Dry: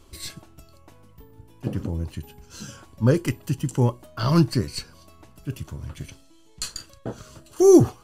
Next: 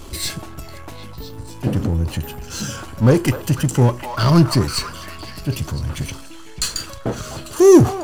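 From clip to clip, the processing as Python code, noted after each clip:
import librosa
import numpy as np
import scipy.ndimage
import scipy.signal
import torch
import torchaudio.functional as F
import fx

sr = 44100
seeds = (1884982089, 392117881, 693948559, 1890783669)

y = fx.echo_stepped(x, sr, ms=250, hz=960.0, octaves=0.7, feedback_pct=70, wet_db=-9.5)
y = fx.power_curve(y, sr, exponent=0.7)
y = y * librosa.db_to_amplitude(2.5)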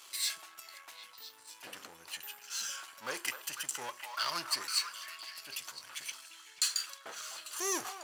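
y = scipy.signal.sosfilt(scipy.signal.butter(2, 1500.0, 'highpass', fs=sr, output='sos'), x)
y = y * librosa.db_to_amplitude(-7.5)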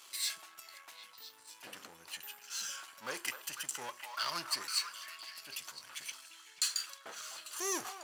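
y = fx.peak_eq(x, sr, hz=190.0, db=3.0, octaves=0.81)
y = y * librosa.db_to_amplitude(-2.0)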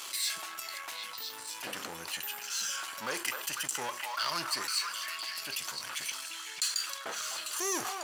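y = fx.env_flatten(x, sr, amount_pct=50)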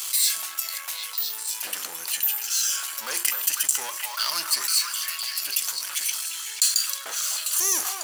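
y = fx.riaa(x, sr, side='recording')
y = y * librosa.db_to_amplitude(1.0)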